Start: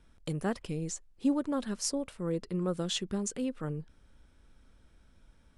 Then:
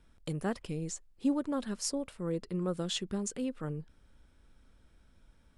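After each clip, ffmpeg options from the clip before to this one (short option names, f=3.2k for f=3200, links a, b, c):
-af "bandreject=f=6k:w=26,volume=-1.5dB"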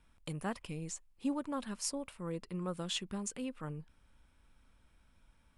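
-af "equalizer=f=400:t=o:w=0.67:g=-4,equalizer=f=1k:t=o:w=0.67:g=6,equalizer=f=2.5k:t=o:w=0.67:g=6,equalizer=f=10k:t=o:w=0.67:g=5,volume=-4.5dB"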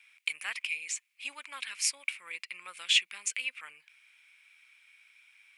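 -af "highpass=f=2.3k:t=q:w=7,volume=7.5dB"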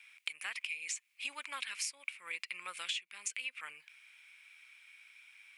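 -af "acompressor=threshold=-37dB:ratio=20,volume=2dB"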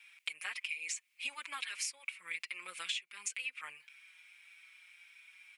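-filter_complex "[0:a]asplit=2[a][b];[b]adelay=5.2,afreqshift=-1.6[c];[a][c]amix=inputs=2:normalize=1,volume=3dB"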